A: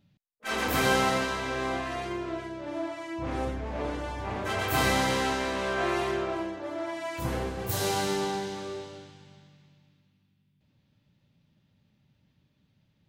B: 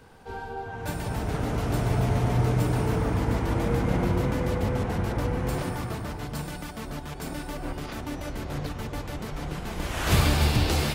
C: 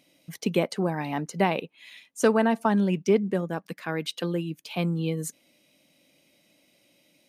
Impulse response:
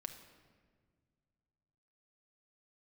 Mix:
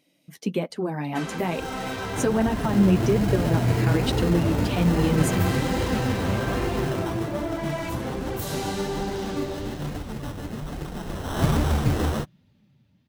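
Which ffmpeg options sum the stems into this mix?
-filter_complex "[0:a]acompressor=threshold=0.0178:ratio=6,adelay=700,volume=1.06[s0];[1:a]acrusher=samples=19:mix=1:aa=0.000001,adelay=1300,volume=1.19[s1];[2:a]volume=0.841[s2];[s0][s2]amix=inputs=2:normalize=0,dynaudnorm=f=150:g=17:m=2.82,alimiter=limit=0.237:level=0:latency=1:release=208,volume=1[s3];[s1][s3]amix=inputs=2:normalize=0,flanger=delay=2:depth=9.5:regen=-22:speed=1.2:shape=triangular,equalizer=f=200:t=o:w=2:g=5"

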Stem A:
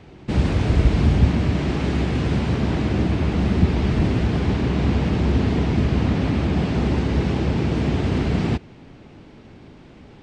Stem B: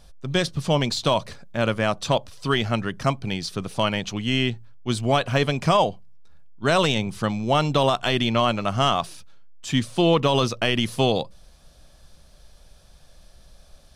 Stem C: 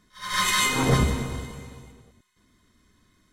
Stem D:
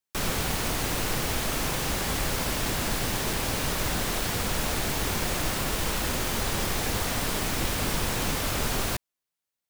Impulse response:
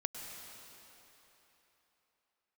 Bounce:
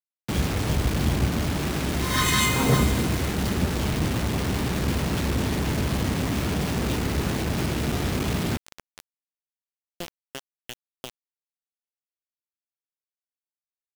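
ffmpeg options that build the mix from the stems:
-filter_complex "[0:a]aeval=exprs='clip(val(0),-1,0.1)':c=same,volume=0.596[s0];[1:a]equalizer=f=770:t=o:w=2.7:g=-7,aeval=exprs='val(0)*pow(10,-32*if(lt(mod(2.9*n/s,1),2*abs(2.9)/1000),1-mod(2.9*n/s,1)/(2*abs(2.9)/1000),(mod(2.9*n/s,1)-2*abs(2.9)/1000)/(1-2*abs(2.9)/1000))/20)':c=same,volume=0.299[s1];[2:a]adelay=1800,volume=0.944[s2];[3:a]aemphasis=mode=reproduction:type=bsi,volume=0.106[s3];[s0][s1][s2][s3]amix=inputs=4:normalize=0,highpass=42,acrusher=bits=4:mix=0:aa=0.000001"

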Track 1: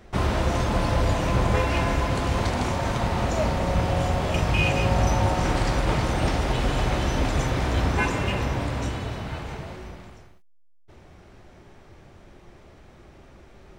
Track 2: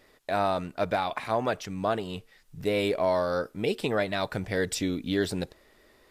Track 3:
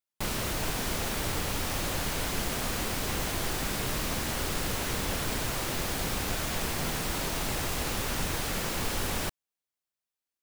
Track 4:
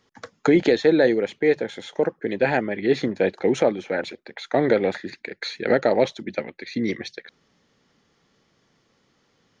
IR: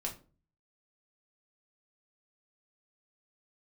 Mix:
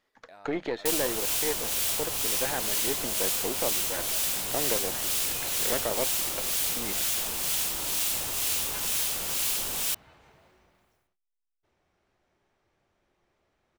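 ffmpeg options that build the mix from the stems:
-filter_complex "[0:a]adelay=750,volume=0.112[s0];[1:a]acompressor=threshold=0.0398:ratio=6,volume=0.133[s1];[2:a]acrossover=split=1300[s2][s3];[s2]aeval=exprs='val(0)*(1-0.5/2+0.5/2*cos(2*PI*2.1*n/s))':c=same[s4];[s3]aeval=exprs='val(0)*(1-0.5/2-0.5/2*cos(2*PI*2.1*n/s))':c=same[s5];[s4][s5]amix=inputs=2:normalize=0,aexciter=amount=3:drive=4.3:freq=2600,adelay=650,volume=0.75[s6];[3:a]aeval=exprs='if(lt(val(0),0),0.447*val(0),val(0))':c=same,lowpass=f=3500:p=1,volume=0.447[s7];[s0][s1][s6][s7]amix=inputs=4:normalize=0,lowshelf=f=310:g=-11"

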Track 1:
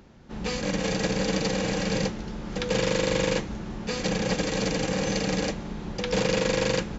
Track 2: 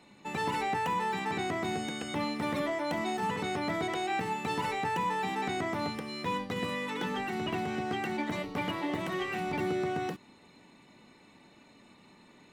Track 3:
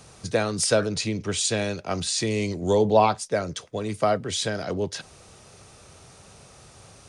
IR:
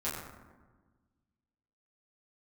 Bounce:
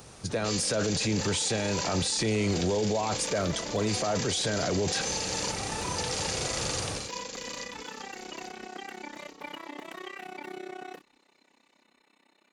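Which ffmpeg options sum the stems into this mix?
-filter_complex "[0:a]acompressor=threshold=0.0501:ratio=6,bass=f=250:g=-11,treble=f=4000:g=11,acrossover=split=140|3000[s0][s1][s2];[s1]acompressor=threshold=0.02:ratio=6[s3];[s0][s3][s2]amix=inputs=3:normalize=0,volume=0.891,asplit=2[s4][s5];[s5]volume=0.422[s6];[1:a]highpass=f=220:w=0.5412,highpass=f=220:w=1.3066,lowshelf=f=420:g=-7.5,tremolo=f=32:d=0.919,adelay=850,volume=0.841[s7];[2:a]dynaudnorm=f=690:g=3:m=6.68,alimiter=limit=0.266:level=0:latency=1,volume=0.891[s8];[s6]aecho=0:1:839|1678|2517|3356|4195|5034:1|0.41|0.168|0.0689|0.0283|0.0116[s9];[s4][s7][s8][s9]amix=inputs=4:normalize=0,alimiter=limit=0.1:level=0:latency=1:release=11"

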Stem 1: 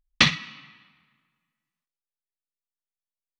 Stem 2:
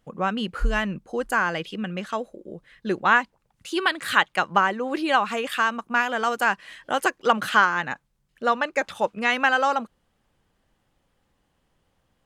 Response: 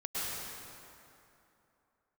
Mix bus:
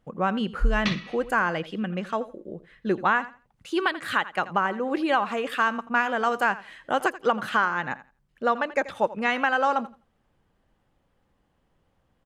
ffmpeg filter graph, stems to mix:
-filter_complex "[0:a]highshelf=f=4600:g=-7.5,adelay=650,volume=0.944[s0];[1:a]highshelf=f=2700:g=-9.5,volume=1.12,asplit=3[s1][s2][s3];[s2]volume=0.141[s4];[s3]apad=whole_len=178511[s5];[s0][s5]sidechaincompress=threshold=0.0355:ratio=5:attack=16:release=497[s6];[s4]aecho=0:1:84|168|252:1|0.18|0.0324[s7];[s6][s1][s7]amix=inputs=3:normalize=0,alimiter=limit=0.299:level=0:latency=1:release=332"

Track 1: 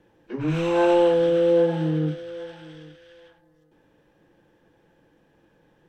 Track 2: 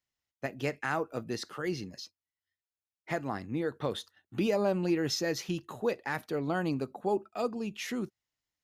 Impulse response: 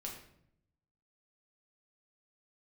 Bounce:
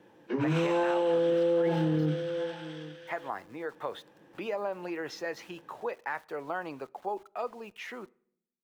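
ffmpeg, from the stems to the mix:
-filter_complex "[0:a]highpass=150,volume=1.26,asplit=2[s0][s1];[s1]volume=0.106[s2];[1:a]acrossover=split=470 2600:gain=0.112 1 0.158[s3][s4][s5];[s3][s4][s5]amix=inputs=3:normalize=0,acompressor=threshold=0.0282:ratio=6,aeval=exprs='val(0)*gte(abs(val(0)),0.00133)':c=same,volume=1.19,asplit=3[s6][s7][s8];[s7]volume=0.112[s9];[s8]apad=whole_len=259474[s10];[s0][s10]sidechaincompress=threshold=0.0141:ratio=8:attack=16:release=138[s11];[2:a]atrim=start_sample=2205[s12];[s2][s9]amix=inputs=2:normalize=0[s13];[s13][s12]afir=irnorm=-1:irlink=0[s14];[s11][s6][s14]amix=inputs=3:normalize=0,equalizer=f=950:w=5.9:g=3.5,alimiter=limit=0.1:level=0:latency=1"

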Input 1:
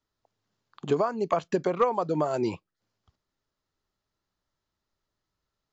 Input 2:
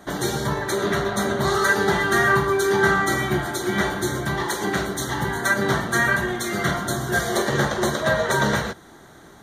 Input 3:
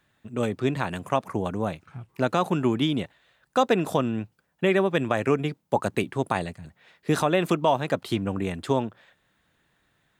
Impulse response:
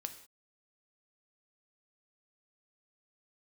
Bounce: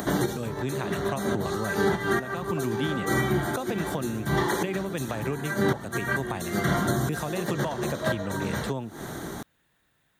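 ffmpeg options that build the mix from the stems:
-filter_complex "[0:a]adelay=1250,volume=0.168[s0];[1:a]acompressor=mode=upward:threshold=0.0316:ratio=2.5,equalizer=f=190:t=o:w=3:g=6,volume=1[s1];[2:a]acrossover=split=180[s2][s3];[s3]acompressor=threshold=0.0447:ratio=6[s4];[s2][s4]amix=inputs=2:normalize=0,volume=0.75,asplit=2[s5][s6];[s6]apad=whole_len=415723[s7];[s1][s7]sidechaincompress=threshold=0.00501:ratio=4:attack=7.1:release=133[s8];[s0][s8][s5]amix=inputs=3:normalize=0,acrossover=split=3200[s9][s10];[s10]acompressor=threshold=0.0141:ratio=4:attack=1:release=60[s11];[s9][s11]amix=inputs=2:normalize=0,highshelf=f=9100:g=10,alimiter=limit=0.2:level=0:latency=1:release=386"

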